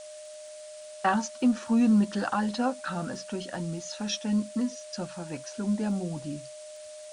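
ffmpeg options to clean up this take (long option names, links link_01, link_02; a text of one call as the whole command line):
ffmpeg -i in.wav -af "adeclick=threshold=4,bandreject=frequency=610:width=30,afftdn=noise_reduction=28:noise_floor=-44" out.wav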